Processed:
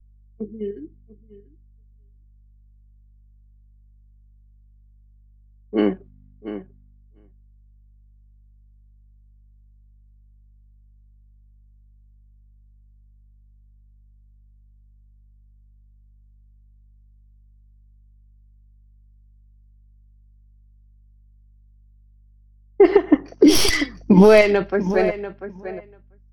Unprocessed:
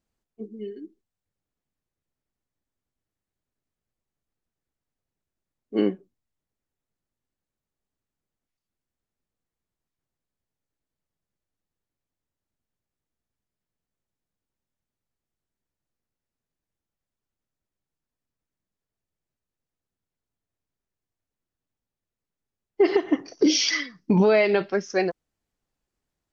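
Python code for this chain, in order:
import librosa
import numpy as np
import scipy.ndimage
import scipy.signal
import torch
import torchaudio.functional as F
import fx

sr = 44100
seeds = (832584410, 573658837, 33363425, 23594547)

p1 = fx.tracing_dist(x, sr, depth_ms=0.057)
p2 = fx.level_steps(p1, sr, step_db=18)
p3 = p1 + (p2 * 10.0 ** (0.5 / 20.0))
p4 = fx.spec_box(p3, sr, start_s=5.78, length_s=0.32, low_hz=560.0, high_hz=5200.0, gain_db=6)
p5 = fx.echo_feedback(p4, sr, ms=691, feedback_pct=16, wet_db=-12)
p6 = fx.add_hum(p5, sr, base_hz=50, snr_db=23)
p7 = fx.low_shelf(p6, sr, hz=62.0, db=12.0)
p8 = fx.band_widen(p7, sr, depth_pct=100)
y = p8 * 10.0 ** (-7.5 / 20.0)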